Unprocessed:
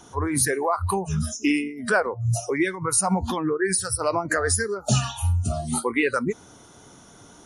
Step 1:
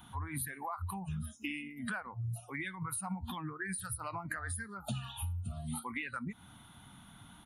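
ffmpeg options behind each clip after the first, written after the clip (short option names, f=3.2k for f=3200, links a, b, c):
-af "firequalizer=gain_entry='entry(210,0);entry(420,-23);entry(800,-4);entry(3600,1);entry(5600,-25);entry(12000,8)':delay=0.05:min_phase=1,acompressor=threshold=-34dB:ratio=6,volume=-2.5dB"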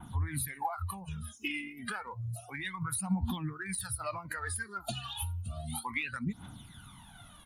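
-af "adynamicequalizer=threshold=0.00112:dfrequency=4600:dqfactor=1.1:tfrequency=4600:tqfactor=1.1:attack=5:release=100:ratio=0.375:range=3:mode=boostabove:tftype=bell,aphaser=in_gain=1:out_gain=1:delay=3:decay=0.69:speed=0.31:type=triangular"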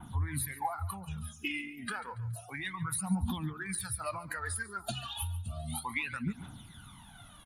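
-af "aecho=1:1:141|282|423:0.141|0.0523|0.0193"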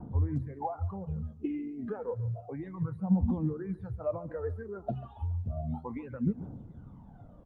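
-af "lowpass=f=490:t=q:w=4.4,volume=4dB" -ar 48000 -c:a libopus -b:a 48k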